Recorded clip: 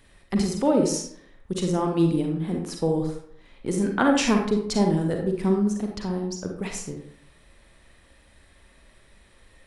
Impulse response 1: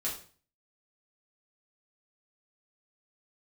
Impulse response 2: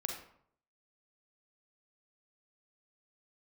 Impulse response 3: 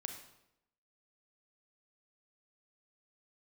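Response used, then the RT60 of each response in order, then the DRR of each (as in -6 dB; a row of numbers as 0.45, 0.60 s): 2; 0.40, 0.65, 0.85 s; -6.0, 1.5, 4.5 dB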